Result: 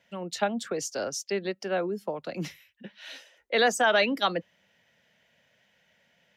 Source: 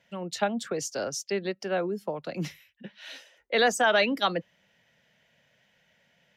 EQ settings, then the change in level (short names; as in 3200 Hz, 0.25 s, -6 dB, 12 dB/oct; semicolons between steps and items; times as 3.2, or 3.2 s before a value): HPF 51 Hz; bell 140 Hz -4.5 dB 0.54 oct; 0.0 dB